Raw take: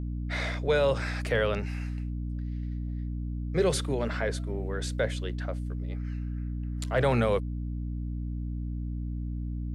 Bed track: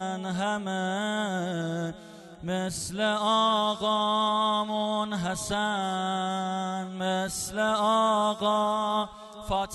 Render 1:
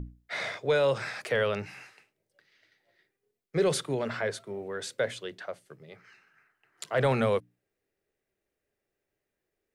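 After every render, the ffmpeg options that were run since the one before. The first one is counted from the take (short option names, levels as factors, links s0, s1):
-af "bandreject=f=60:t=h:w=6,bandreject=f=120:t=h:w=6,bandreject=f=180:t=h:w=6,bandreject=f=240:t=h:w=6,bandreject=f=300:t=h:w=6"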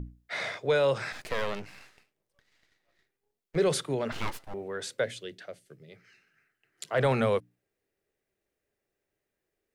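-filter_complex "[0:a]asettb=1/sr,asplit=3[s0][s1][s2];[s0]atrim=end=1.124[s3];[s1]atrim=start=1.12:end=3.56,asetpts=PTS-STARTPTS,afade=t=in:d=0.004:c=qsin,afade=t=out:st=2.436:d=0.004:c=qsin,aeval=exprs='max(val(0),0)':c=same[s4];[s2]atrim=start=3.556[s5];[s3][s4]acrossfade=d=0.004:c1=hsin:c2=qsin[s6];[s6][s5]acrossfade=d=0.004:c1=qsin:c2=hsin,asettb=1/sr,asplit=3[s7][s8][s9];[s7]atrim=end=4.124[s10];[s8]atrim=start=4.12:end=4.54,asetpts=PTS-STARTPTS,afade=t=in:d=0.004:c=qsin,afade=t=out:st=0.416:d=0.004:c=qsin,aeval=exprs='abs(val(0))':c=same[s11];[s9]atrim=start=4.536[s12];[s10][s11]acrossfade=d=0.004:c1=hsin:c2=qsin[s13];[s13][s12]acrossfade=d=0.004:c1=qsin:c2=hsin,asettb=1/sr,asplit=3[s14][s15][s16];[s14]atrim=end=5.044[s17];[s15]atrim=start=5.04:end=6.89,asetpts=PTS-STARTPTS,afade=t=in:d=0.004:c=qsin,afade=t=out:st=1.846:d=0.004:c=qsin,equalizer=f=1000:t=o:w=1.1:g=-13.5[s18];[s16]atrim=start=6.886[s19];[s17][s18]acrossfade=d=0.004:c1=hsin:c2=qsin[s20];[s20][s19]acrossfade=d=0.004:c1=qsin:c2=hsin"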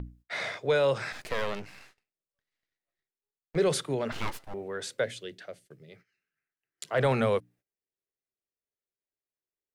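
-af "agate=range=0.112:threshold=0.00158:ratio=16:detection=peak"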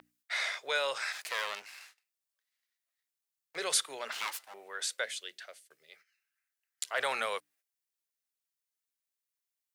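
-af "highpass=1000,highshelf=f=4300:g=7.5"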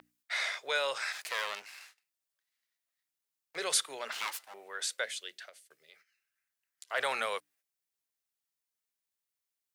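-filter_complex "[0:a]asettb=1/sr,asplit=3[s0][s1][s2];[s0]atrim=end=5.494[s3];[s1]atrim=start=5.49:end=6.9,asetpts=PTS-STARTPTS,afade=t=in:d=0.004:c=qsin,afade=t=out:st=1.406:d=0.004:c=qsin,acompressor=threshold=0.00282:ratio=6:attack=3.2:release=140:knee=1:detection=peak[s4];[s2]atrim=start=6.896[s5];[s3][s4]acrossfade=d=0.004:c1=hsin:c2=qsin[s6];[s6][s5]acrossfade=d=0.004:c1=qsin:c2=hsin"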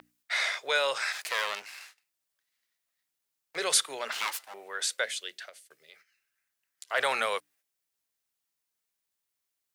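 -af "volume=1.68"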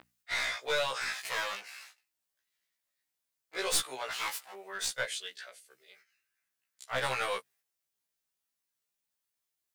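-af "aeval=exprs='clip(val(0),-1,0.0422)':c=same,afftfilt=real='re*1.73*eq(mod(b,3),0)':imag='im*1.73*eq(mod(b,3),0)':win_size=2048:overlap=0.75"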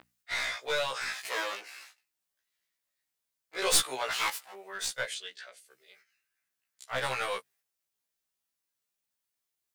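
-filter_complex "[0:a]asettb=1/sr,asplit=3[s0][s1][s2];[s0]atrim=end=1.284[s3];[s1]atrim=start=1.28:end=1.85,asetpts=PTS-STARTPTS,afade=t=in:d=0.004:c=qsin,afade=t=out:st=0.566:d=0.004:c=qsin,highpass=f=330:t=q:w=3.4[s4];[s2]atrim=start=1.846[s5];[s3][s4]acrossfade=d=0.004:c1=hsin:c2=qsin[s6];[s6][s5]acrossfade=d=0.004:c1=qsin:c2=hsin,asettb=1/sr,asplit=3[s7][s8][s9];[s7]atrim=end=5.144[s10];[s8]atrim=start=5.14:end=5.57,asetpts=PTS-STARTPTS,afade=t=in:d=0.004:c=qsin,afade=t=out:st=0.426:d=0.004:c=qsin,equalizer=f=13000:w=1.4:g=-15[s11];[s9]atrim=start=5.566[s12];[s10][s11]acrossfade=d=0.004:c1=hsin:c2=qsin[s13];[s13][s12]acrossfade=d=0.004:c1=qsin:c2=hsin,asplit=3[s14][s15][s16];[s14]atrim=end=3.622[s17];[s15]atrim=start=3.618:end=4.302,asetpts=PTS-STARTPTS,volume=1.78[s18];[s16]atrim=start=4.298[s19];[s17][s18]acrossfade=d=0.004:c1=hsin:c2=hsin[s20];[s20][s19]acrossfade=d=0.004:c1=hsin:c2=hsin"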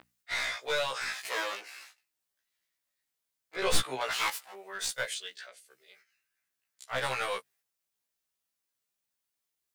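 -filter_complex "[0:a]asettb=1/sr,asplit=3[s0][s1][s2];[s0]atrim=end=3.564[s3];[s1]atrim=start=3.56:end=4.01,asetpts=PTS-STARTPTS,afade=t=in:d=0.004:c=qsin,afade=t=out:st=0.446:d=0.004:c=qsin,bass=f=250:g=9,treble=f=4000:g=-8[s4];[s2]atrim=start=4.006[s5];[s3][s4]acrossfade=d=0.004:c1=hsin:c2=qsin[s6];[s6][s5]acrossfade=d=0.004:c1=qsin:c2=hsin,asettb=1/sr,asplit=3[s7][s8][s9];[s7]atrim=end=4.894[s10];[s8]atrim=start=4.89:end=5.47,asetpts=PTS-STARTPTS,afade=t=in:d=0.004:c=qsin,afade=t=out:st=0.576:d=0.004:c=qsin,highshelf=f=9800:g=7.5[s11];[s9]atrim=start=5.466[s12];[s10][s11]acrossfade=d=0.004:c1=hsin:c2=qsin[s13];[s13][s12]acrossfade=d=0.004:c1=qsin:c2=hsin"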